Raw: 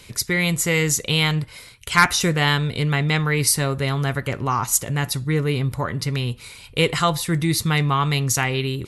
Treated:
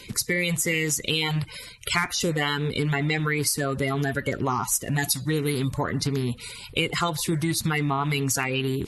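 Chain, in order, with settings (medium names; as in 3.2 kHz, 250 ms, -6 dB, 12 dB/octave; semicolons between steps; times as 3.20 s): coarse spectral quantiser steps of 30 dB; 4.98–5.71 s: treble shelf 2.9 kHz +11.5 dB; compression 6:1, threshold -24 dBFS, peak gain reduction 14 dB; trim +2.5 dB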